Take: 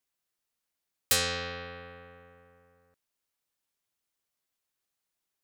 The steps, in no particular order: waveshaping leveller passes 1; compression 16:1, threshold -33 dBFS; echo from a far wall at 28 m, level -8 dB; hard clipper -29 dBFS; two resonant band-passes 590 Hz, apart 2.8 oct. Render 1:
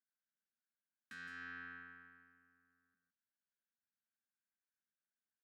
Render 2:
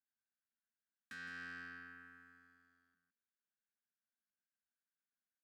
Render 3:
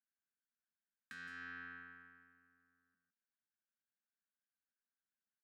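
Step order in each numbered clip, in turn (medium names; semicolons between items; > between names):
echo from a far wall > waveshaping leveller > compression > hard clipper > two resonant band-passes; compression > hard clipper > two resonant band-passes > waveshaping leveller > echo from a far wall; echo from a far wall > waveshaping leveller > compression > two resonant band-passes > hard clipper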